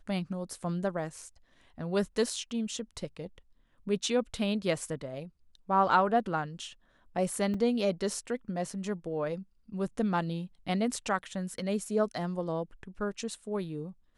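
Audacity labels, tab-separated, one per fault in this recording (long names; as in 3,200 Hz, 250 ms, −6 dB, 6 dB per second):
7.540000	7.540000	drop-out 3.3 ms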